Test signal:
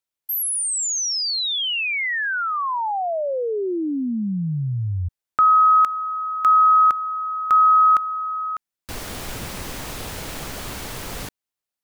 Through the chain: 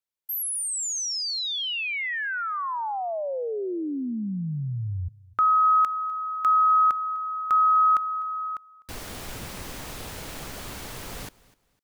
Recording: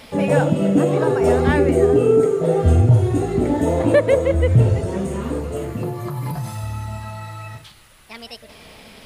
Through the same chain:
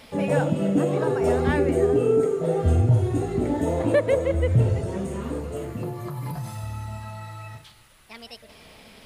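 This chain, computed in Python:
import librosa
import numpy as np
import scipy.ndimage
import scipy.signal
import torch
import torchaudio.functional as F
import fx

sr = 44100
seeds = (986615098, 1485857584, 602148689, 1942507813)

y = fx.echo_feedback(x, sr, ms=252, feedback_pct=26, wet_db=-22)
y = F.gain(torch.from_numpy(y), -5.5).numpy()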